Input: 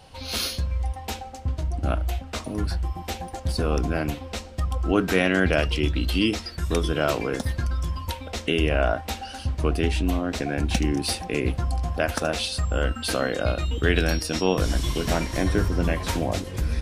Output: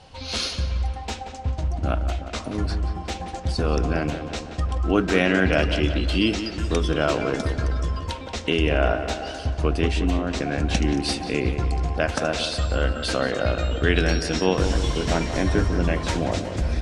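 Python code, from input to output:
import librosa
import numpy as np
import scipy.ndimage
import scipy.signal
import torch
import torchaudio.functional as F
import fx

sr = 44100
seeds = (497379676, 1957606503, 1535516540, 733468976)

p1 = scipy.signal.sosfilt(scipy.signal.butter(4, 8200.0, 'lowpass', fs=sr, output='sos'), x)
p2 = p1 + fx.echo_tape(p1, sr, ms=180, feedback_pct=69, wet_db=-8, lp_hz=2800.0, drive_db=7.0, wow_cents=15, dry=0)
y = p2 * librosa.db_to_amplitude(1.0)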